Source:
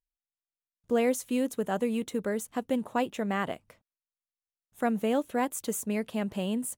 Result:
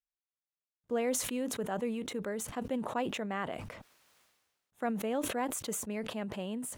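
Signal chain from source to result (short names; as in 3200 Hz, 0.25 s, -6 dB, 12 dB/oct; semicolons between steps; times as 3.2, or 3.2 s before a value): HPF 1500 Hz 6 dB/oct; tilt -4 dB/oct; sustainer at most 43 dB/s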